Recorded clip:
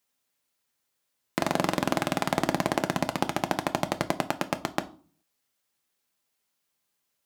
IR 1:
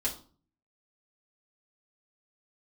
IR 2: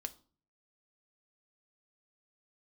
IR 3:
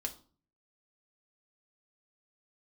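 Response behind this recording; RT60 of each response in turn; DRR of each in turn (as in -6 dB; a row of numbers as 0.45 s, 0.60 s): 2; 0.40 s, 0.40 s, 0.40 s; -6.0 dB, 7.5 dB, 2.0 dB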